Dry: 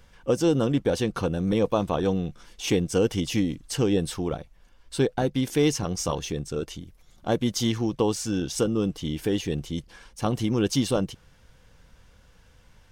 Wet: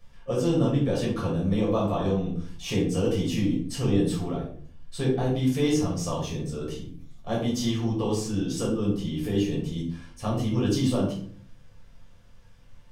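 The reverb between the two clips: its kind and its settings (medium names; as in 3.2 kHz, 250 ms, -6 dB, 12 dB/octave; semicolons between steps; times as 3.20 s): simulated room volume 570 m³, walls furnished, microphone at 6 m; trim -11 dB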